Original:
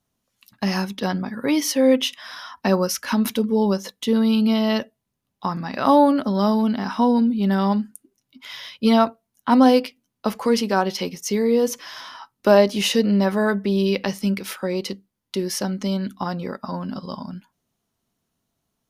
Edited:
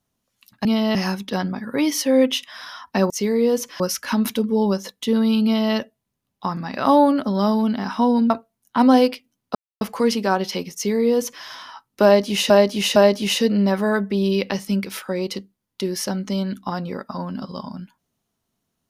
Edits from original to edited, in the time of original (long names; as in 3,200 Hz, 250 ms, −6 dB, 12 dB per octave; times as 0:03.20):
0:04.44–0:04.74: duplicate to 0:00.65
0:07.30–0:09.02: remove
0:10.27: splice in silence 0.26 s
0:11.20–0:11.90: duplicate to 0:02.80
0:12.50–0:12.96: repeat, 3 plays